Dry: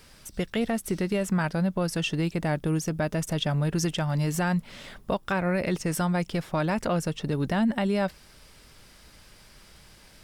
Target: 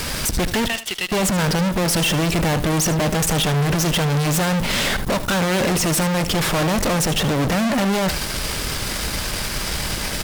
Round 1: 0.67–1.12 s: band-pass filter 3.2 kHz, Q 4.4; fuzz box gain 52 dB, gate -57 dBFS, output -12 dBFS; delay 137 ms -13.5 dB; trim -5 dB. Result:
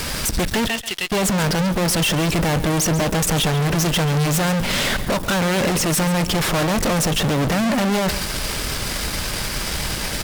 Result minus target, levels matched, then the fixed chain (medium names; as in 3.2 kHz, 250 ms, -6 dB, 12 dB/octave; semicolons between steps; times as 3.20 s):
echo 60 ms late
0.67–1.12 s: band-pass filter 3.2 kHz, Q 4.4; fuzz box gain 52 dB, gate -57 dBFS, output -12 dBFS; delay 77 ms -13.5 dB; trim -5 dB